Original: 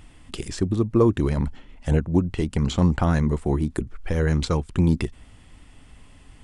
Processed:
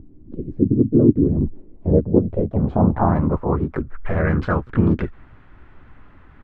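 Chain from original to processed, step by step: harmoniser -5 st -10 dB, +3 st -3 dB, +5 st -5 dB; low-pass sweep 290 Hz -> 1500 Hz, 1.15–3.93; gain -1 dB

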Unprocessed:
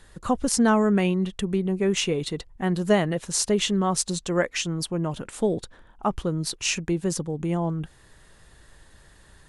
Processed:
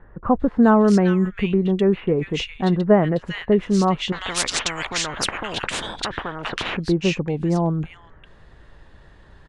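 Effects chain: LPF 2600 Hz 12 dB/oct; bands offset in time lows, highs 0.4 s, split 1800 Hz; 4.12–6.77 spectral compressor 10:1; gain +5.5 dB

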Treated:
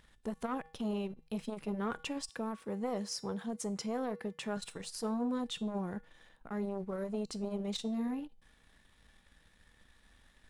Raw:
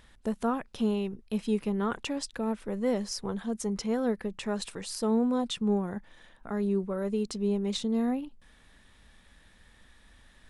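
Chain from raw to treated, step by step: 2.29–4.57 HPF 100 Hz 12 dB/oct; sample leveller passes 1; resonator 160 Hz, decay 0.39 s, harmonics odd, mix 60%; core saturation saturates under 360 Hz

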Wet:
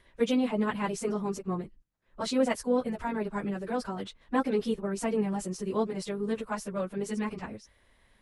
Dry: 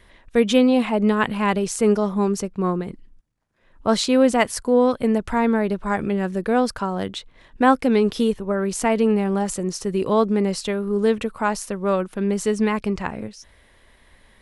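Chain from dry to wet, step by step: plain phase-vocoder stretch 0.57×; gain -7 dB

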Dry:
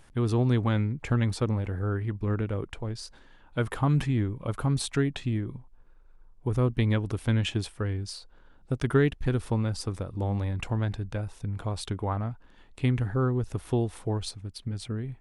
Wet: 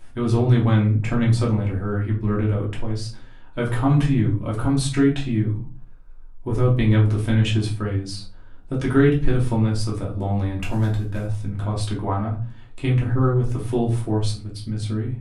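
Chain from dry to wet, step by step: 10.62–11.26 CVSD 64 kbps; reverb RT60 0.40 s, pre-delay 3 ms, DRR -4 dB

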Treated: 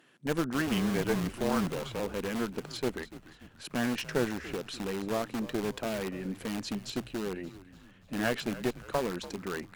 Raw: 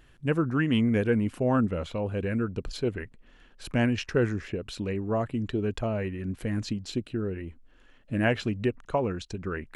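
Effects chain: HPF 180 Hz 24 dB/oct; in parallel at -5 dB: wrapped overs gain 27 dB; 0.67–2 on the sum: frequency shift -31 Hz; tube stage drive 18 dB, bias 0.75; frequency-shifting echo 0.29 s, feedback 52%, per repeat -82 Hz, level -16 dB

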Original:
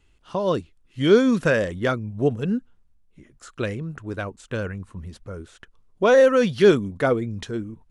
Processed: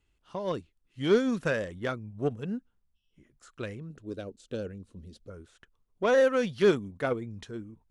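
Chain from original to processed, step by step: 3.9–5.3 ten-band EQ 125 Hz -3 dB, 250 Hz +5 dB, 500 Hz +7 dB, 1000 Hz -12 dB, 2000 Hz -7 dB, 4000 Hz +7 dB; added harmonics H 7 -27 dB, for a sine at -3.5 dBFS; 2.98–3.2 spectral repair 2600–5700 Hz after; gain -7.5 dB

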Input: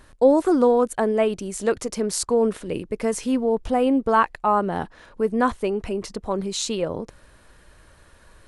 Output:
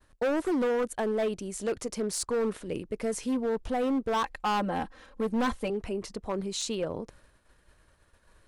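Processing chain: expander -45 dBFS; 4.24–5.7 comb 3.8 ms, depth 89%; hard clip -18 dBFS, distortion -8 dB; gain -6 dB

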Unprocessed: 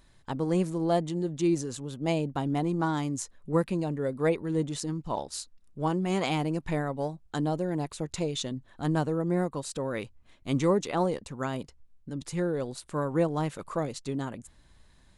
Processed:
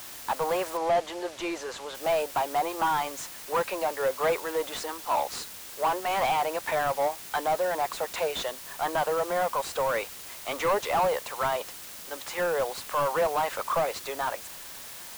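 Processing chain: HPF 610 Hz 24 dB/oct; overdrive pedal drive 26 dB, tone 1000 Hz, clips at -15.5 dBFS; in parallel at -3 dB: requantised 6-bit, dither triangular; 0.77–1.95 on the sum: air absorption 55 m; gain -3.5 dB

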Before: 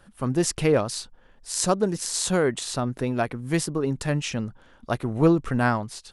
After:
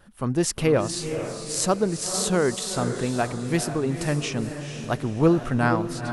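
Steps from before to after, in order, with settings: diffused feedback echo 0.473 s, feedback 43%, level -8 dB; wow and flutter 35 cents

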